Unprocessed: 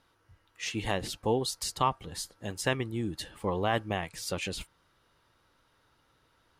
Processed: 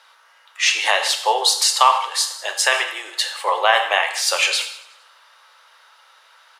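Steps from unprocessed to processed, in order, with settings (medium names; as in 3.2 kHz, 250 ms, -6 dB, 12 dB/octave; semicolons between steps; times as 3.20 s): Bessel high-pass 1 kHz, order 8; treble shelf 11 kHz -12 dB; on a send: feedback delay 93 ms, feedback 59%, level -20 dB; on the sum: gated-style reverb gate 230 ms falling, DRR 5 dB; loudness maximiser +20.5 dB; trim -1 dB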